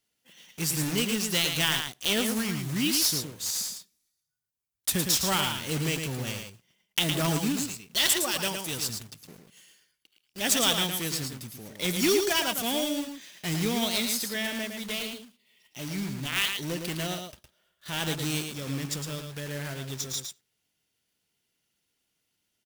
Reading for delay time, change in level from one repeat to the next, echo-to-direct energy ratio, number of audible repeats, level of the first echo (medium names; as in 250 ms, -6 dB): 111 ms, no regular repeats, -6.0 dB, 1, -6.0 dB